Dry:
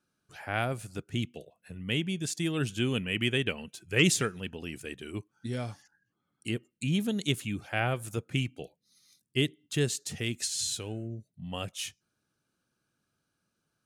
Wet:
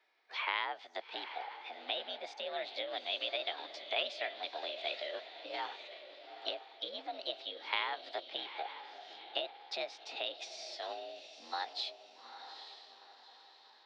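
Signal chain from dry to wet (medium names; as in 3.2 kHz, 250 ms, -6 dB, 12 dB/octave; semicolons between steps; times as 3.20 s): compression 6:1, threshold -40 dBFS, peak gain reduction 20 dB; mistuned SSB +60 Hz 400–3300 Hz; on a send: echo that smears into a reverb 853 ms, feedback 42%, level -10 dB; on the sum: formant shift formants +5 st; trim +9 dB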